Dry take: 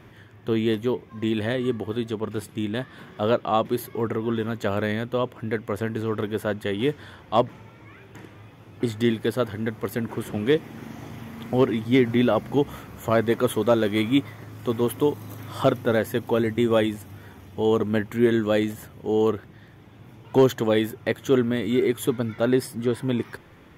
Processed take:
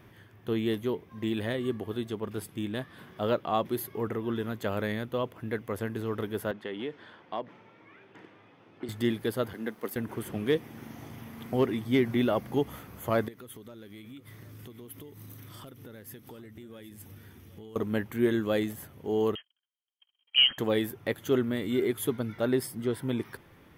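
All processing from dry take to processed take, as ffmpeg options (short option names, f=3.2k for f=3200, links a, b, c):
-filter_complex "[0:a]asettb=1/sr,asplit=3[a][b][c];[a]atrim=end=6.514[d];[b]atrim=start=6.51:end=8.89,asetpts=PTS-STARTPTS,afade=t=in:d=0.004:c=qsin,afade=t=out:st=2.376:d=0.004:c=qsin,acompressor=threshold=-24dB:ratio=4:attack=3.2:release=140:knee=1:detection=peak,highpass=230,lowpass=3.8k[e];[c]atrim=start=8.886[f];[d][e]acrossfade=d=0.004:c1=hsin:c2=qsin[g];[g][f]acrossfade=d=0.004:c1=qsin:c2=hsin,asettb=1/sr,asplit=3[h][i][j];[h]atrim=end=9.534[k];[i]atrim=start=9.53:end=9.96,asetpts=PTS-STARTPTS,afade=t=in:d=0.004:c=qsin,afade=t=out:st=0.426:d=0.004:c=qsin,highpass=f=190:w=0.5412,highpass=f=190:w=1.3066,aeval=exprs='sgn(val(0))*max(abs(val(0))-0.00158,0)':c=same[l];[j]atrim=start=9.956[m];[k][l]acrossfade=d=0.004:c1=hsin:c2=qsin[n];[n][m]acrossfade=d=0.004:c1=qsin:c2=hsin,asettb=1/sr,asplit=3[o][p][q];[o]atrim=end=13.284[r];[p]atrim=start=13.28:end=17.76,asetpts=PTS-STARTPTS,afade=t=in:d=0.004:c=qsin,afade=t=out:st=4.476:d=0.004:c=qsin,equalizer=f=770:w=0.86:g=-9,acompressor=threshold=-37dB:ratio=12:attack=3.2:release=140:knee=1:detection=peak,aecho=1:1:768:0.168,atrim=end_sample=197568[s];[q]atrim=start=17.756[t];[r][s]acrossfade=d=0.004:c1=hsin:c2=qsin[u];[u][t]acrossfade=d=0.004:c1=qsin:c2=hsin,asettb=1/sr,asplit=3[v][w][x];[v]atrim=end=19.354[y];[w]atrim=start=19.35:end=20.58,asetpts=PTS-STARTPTS,afade=t=in:d=0.004:c=qsin,afade=t=out:st=1.226:d=0.004:c=qsin,lowpass=f=2.8k:t=q:w=0.5098,lowpass=f=2.8k:t=q:w=0.6013,lowpass=f=2.8k:t=q:w=0.9,lowpass=f=2.8k:t=q:w=2.563,afreqshift=-3300,agate=range=-48dB:threshold=-43dB:ratio=16:release=100:detection=peak[z];[x]atrim=start=20.576[aa];[y][z]acrossfade=d=0.004:c1=hsin:c2=qsin[ab];[ab][aa]acrossfade=d=0.004:c1=qsin:c2=hsin,highshelf=f=11k:g=11.5,bandreject=f=7k:w=8.8,volume=-6dB"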